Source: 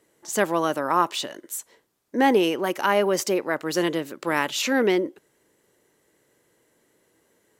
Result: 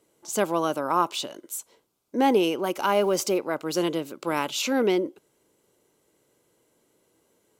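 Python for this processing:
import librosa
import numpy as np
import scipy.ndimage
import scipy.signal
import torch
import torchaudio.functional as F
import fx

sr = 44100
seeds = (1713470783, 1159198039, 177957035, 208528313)

y = fx.law_mismatch(x, sr, coded='mu', at=(2.76, 3.38))
y = fx.peak_eq(y, sr, hz=1800.0, db=-15.0, octaves=0.23)
y = y * librosa.db_to_amplitude(-1.5)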